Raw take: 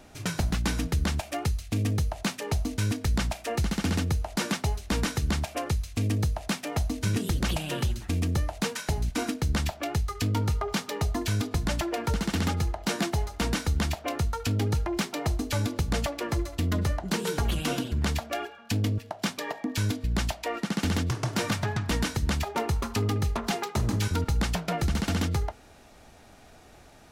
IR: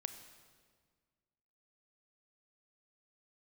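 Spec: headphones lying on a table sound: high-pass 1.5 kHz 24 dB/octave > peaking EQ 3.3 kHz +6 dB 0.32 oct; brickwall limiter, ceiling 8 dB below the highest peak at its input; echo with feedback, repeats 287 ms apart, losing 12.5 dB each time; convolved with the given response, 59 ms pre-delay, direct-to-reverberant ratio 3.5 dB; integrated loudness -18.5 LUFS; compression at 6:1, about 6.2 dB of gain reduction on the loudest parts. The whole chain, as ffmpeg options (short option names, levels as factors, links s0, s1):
-filter_complex "[0:a]acompressor=threshold=0.0355:ratio=6,alimiter=level_in=1.33:limit=0.0631:level=0:latency=1,volume=0.75,aecho=1:1:287|574|861:0.237|0.0569|0.0137,asplit=2[s0][s1];[1:a]atrim=start_sample=2205,adelay=59[s2];[s1][s2]afir=irnorm=-1:irlink=0,volume=0.841[s3];[s0][s3]amix=inputs=2:normalize=0,highpass=f=1500:w=0.5412,highpass=f=1500:w=1.3066,equalizer=f=3300:t=o:w=0.32:g=6,volume=12.6"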